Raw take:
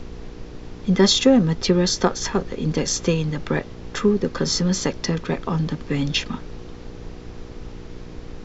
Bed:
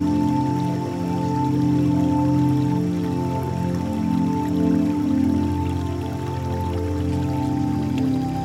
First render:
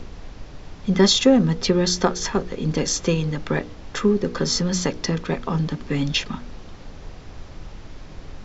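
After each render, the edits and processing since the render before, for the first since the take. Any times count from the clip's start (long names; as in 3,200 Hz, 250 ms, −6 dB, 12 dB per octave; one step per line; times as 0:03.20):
hum removal 60 Hz, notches 8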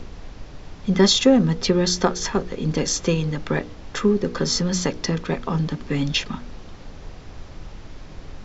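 no processing that can be heard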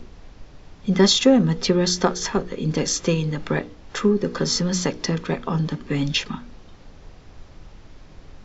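noise reduction from a noise print 6 dB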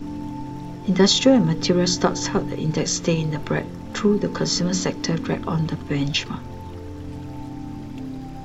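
mix in bed −11.5 dB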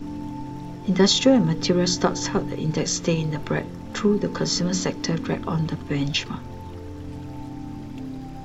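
level −1.5 dB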